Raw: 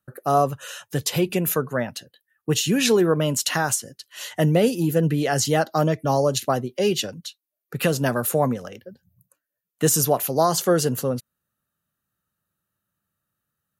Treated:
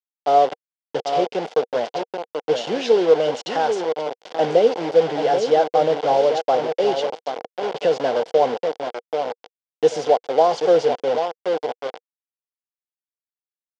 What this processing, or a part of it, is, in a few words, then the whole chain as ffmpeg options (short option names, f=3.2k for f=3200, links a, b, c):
hand-held game console: -filter_complex "[0:a]lowpass=f=10k:w=0.5412,lowpass=f=10k:w=1.3066,lowshelf=f=260:g=4,asplit=2[a][b];[b]adelay=785,lowpass=f=2.3k:p=1,volume=-7dB,asplit=2[c][d];[d]adelay=785,lowpass=f=2.3k:p=1,volume=0.36,asplit=2[e][f];[f]adelay=785,lowpass=f=2.3k:p=1,volume=0.36,asplit=2[g][h];[h]adelay=785,lowpass=f=2.3k:p=1,volume=0.36[i];[a][c][e][g][i]amix=inputs=5:normalize=0,acrusher=bits=3:mix=0:aa=0.000001,highpass=460,equalizer=f=480:t=q:w=4:g=10,equalizer=f=760:t=q:w=4:g=7,equalizer=f=1.2k:t=q:w=4:g=-9,equalizer=f=1.8k:t=q:w=4:g=-8,equalizer=f=2.5k:t=q:w=4:g=-8,equalizer=f=4k:t=q:w=4:g=-7,lowpass=f=4.3k:w=0.5412,lowpass=f=4.3k:w=1.3066"